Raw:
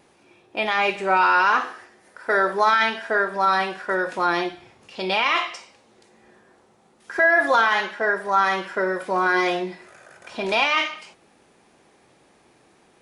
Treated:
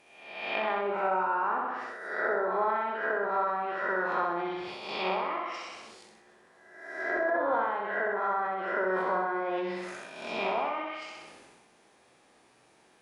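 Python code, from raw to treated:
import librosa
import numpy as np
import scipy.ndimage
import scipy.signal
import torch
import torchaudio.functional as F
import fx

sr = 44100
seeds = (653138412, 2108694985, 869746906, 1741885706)

y = fx.spec_swells(x, sr, rise_s=0.97)
y = fx.low_shelf(y, sr, hz=320.0, db=-7.5)
y = fx.env_lowpass_down(y, sr, base_hz=760.0, full_db=-16.0)
y = fx.room_flutter(y, sr, wall_m=11.0, rt60_s=0.82)
y = fx.sustainer(y, sr, db_per_s=32.0)
y = y * 10.0 ** (-7.5 / 20.0)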